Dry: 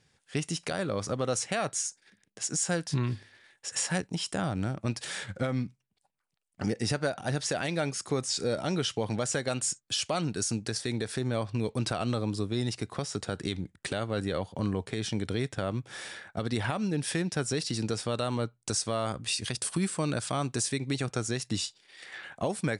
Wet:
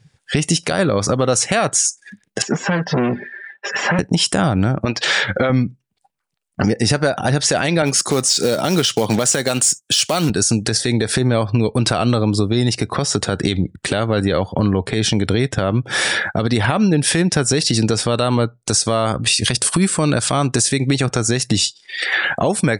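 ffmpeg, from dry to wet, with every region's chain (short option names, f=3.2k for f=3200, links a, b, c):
-filter_complex "[0:a]asettb=1/sr,asplit=3[a][b][c];[a]atrim=end=2.424[d];[b]atrim=start=2.42:end=3.99,asetpts=PTS-STARTPTS,afade=t=in:d=0.004:c=qsin,afade=t=out:st=1.566:d=0.004:c=qsin,aecho=1:1:5:0.65,atrim=end_sample=69237,volume=34dB,asoftclip=hard,volume=-34dB,highpass=200,lowpass=2.4k[e];[c]atrim=start=3.986[f];[d][e]acrossfade=d=0.004:c1=hsin:c2=qsin[g];[g][f]acrossfade=d=0.004:c1=qsin:c2=hsin,asettb=1/sr,asplit=3[h][i][j];[h]atrim=end=4.854[k];[i]atrim=start=4.85:end=5.5,asetpts=PTS-STARTPTS,afade=t=in:d=0.004:c=qsin,afade=t=out:st=0.646:d=0.004:c=qsin,lowpass=5.5k,bass=f=250:g=-11,treble=f=4k:g=-2[l];[j]atrim=start=5.496[m];[k][l]acrossfade=d=0.004:c1=hsin:c2=qsin[n];[n][m]acrossfade=d=0.004:c1=qsin:c2=hsin,asettb=1/sr,asplit=3[o][p][q];[o]atrim=end=7.824[r];[p]atrim=start=7.82:end=10.3,asetpts=PTS-STARTPTS,afade=t=in:d=0.004:c=qsin,afade=t=out:st=2.476:d=0.004:c=qsin,highpass=130,acrusher=bits=4:mode=log:mix=0:aa=0.000001,adynamicequalizer=threshold=0.00891:dfrequency=2800:dqfactor=0.7:tfrequency=2800:tqfactor=0.7:attack=5:release=100:ratio=0.375:range=2:mode=boostabove:tftype=highshelf[s];[q]atrim=start=10.296[t];[r][s]acrossfade=d=0.004:c1=hsin:c2=qsin[u];[u][t]acrossfade=d=0.004:c1=qsin:c2=hsin,afftdn=nr=22:nf=-53,acompressor=threshold=-42dB:ratio=4,alimiter=level_in=31.5dB:limit=-1dB:release=50:level=0:latency=1,volume=-4dB"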